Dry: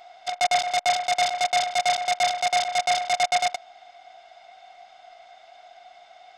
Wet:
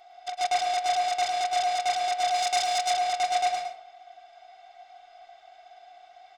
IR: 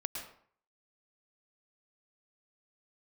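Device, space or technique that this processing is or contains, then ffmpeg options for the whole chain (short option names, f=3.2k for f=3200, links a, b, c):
microphone above a desk: -filter_complex "[0:a]aecho=1:1:2.6:0.5[a];[1:a]atrim=start_sample=2205[b];[a][b]afir=irnorm=-1:irlink=0,asettb=1/sr,asplit=3[c][d][e];[c]atrim=end=2.344[f];[d]atrim=start=2.34:end=2.92,asetpts=PTS-STARTPTS,afade=t=in:d=0.004:c=qsin,afade=t=out:st=0.576:d=0.004:c=qsin,highshelf=f=3.7k:g=8[g];[e]atrim=start=2.916[h];[f][g]acrossfade=d=0.004:c1=hsin:c2=qsin[i];[i][h]acrossfade=d=0.004:c1=qsin:c2=hsin,volume=-6dB"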